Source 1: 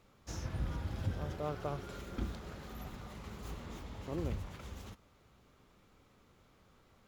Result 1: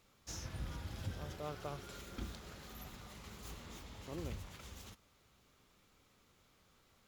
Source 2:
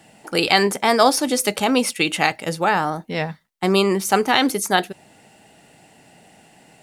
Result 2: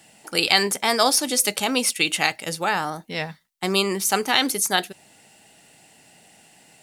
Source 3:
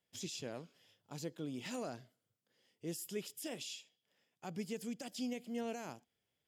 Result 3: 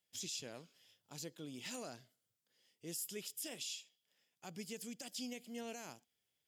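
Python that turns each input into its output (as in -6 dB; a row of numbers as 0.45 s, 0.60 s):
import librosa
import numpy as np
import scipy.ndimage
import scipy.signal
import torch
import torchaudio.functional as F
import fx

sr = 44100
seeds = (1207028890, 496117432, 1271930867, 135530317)

y = fx.high_shelf(x, sr, hz=2200.0, db=10.5)
y = F.gain(torch.from_numpy(y), -6.5).numpy()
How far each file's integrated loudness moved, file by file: -5.5 LU, -2.0 LU, -2.0 LU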